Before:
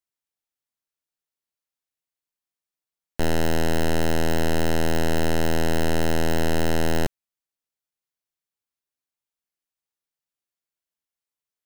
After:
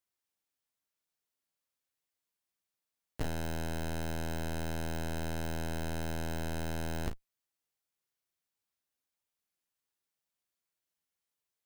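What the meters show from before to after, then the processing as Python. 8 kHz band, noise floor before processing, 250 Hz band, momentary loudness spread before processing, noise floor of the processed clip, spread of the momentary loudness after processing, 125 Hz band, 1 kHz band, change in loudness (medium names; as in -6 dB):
-12.5 dB, under -85 dBFS, -13.5 dB, 3 LU, under -85 dBFS, 2 LU, -10.0 dB, -13.0 dB, -13.0 dB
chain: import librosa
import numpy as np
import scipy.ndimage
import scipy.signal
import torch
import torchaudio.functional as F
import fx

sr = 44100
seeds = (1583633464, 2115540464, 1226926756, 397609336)

y = fx.diode_clip(x, sr, knee_db=-35.0)
y = (np.mod(10.0 ** (27.0 / 20.0) * y + 1.0, 2.0) - 1.0) / 10.0 ** (27.0 / 20.0)
y = fx.room_early_taps(y, sr, ms=(11, 36, 51), db=(-8.5, -9.5, -14.5))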